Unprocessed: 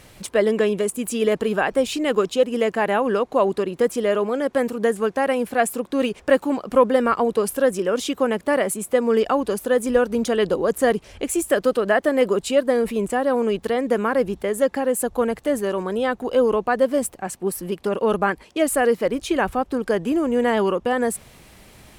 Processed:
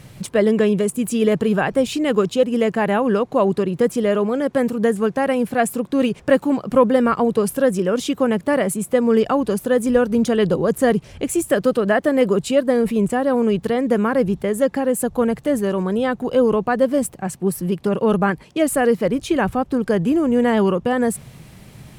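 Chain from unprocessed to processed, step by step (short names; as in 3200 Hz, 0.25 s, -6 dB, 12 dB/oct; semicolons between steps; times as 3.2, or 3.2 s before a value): bell 140 Hz +14.5 dB 1.2 oct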